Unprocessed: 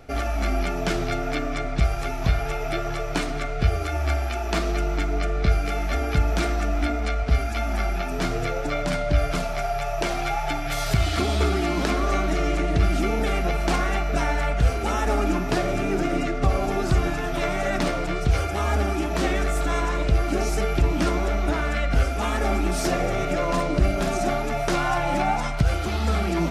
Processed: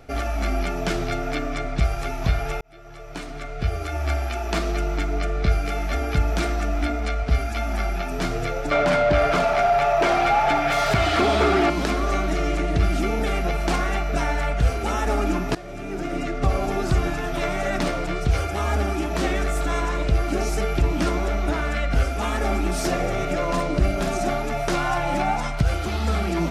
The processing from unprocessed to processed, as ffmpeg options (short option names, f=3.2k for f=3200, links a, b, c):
-filter_complex "[0:a]asettb=1/sr,asplit=3[a][b][c];[a]atrim=end=8.714[d];[b]atrim=start=8.71:end=11.7,asetpts=PTS-STARTPTS,afade=t=in:d=0.004:c=qsin,afade=t=out:st=2.986:d=0.004:c=qsin,asplit=2[e][f];[f]highpass=f=720:p=1,volume=22dB,asoftclip=type=tanh:threshold=-7.5dB[g];[e][g]amix=inputs=2:normalize=0,lowpass=f=1.2k:p=1,volume=-6dB[h];[c]atrim=start=11.696[i];[d][h]acrossfade=d=0.004:c1=hsin:c2=qsin[j];[j][i]acrossfade=d=0.004:c1=qsin:c2=hsin,asplit=3[k][l][m];[k]atrim=end=2.61,asetpts=PTS-STARTPTS,afade=t=out:st=2.606:d=0.004:c=hsin[n];[l]atrim=start=2.61:end=15.55,asetpts=PTS-STARTPTS,afade=t=in:d=1.55,afade=t=out:st=12.936:d=0.004:c=hsin:silence=0.125893[o];[m]atrim=start=15.55,asetpts=PTS-STARTPTS,afade=t=in:d=0.92:silence=0.125893[p];[n][o][p]concat=n=3:v=0:a=1"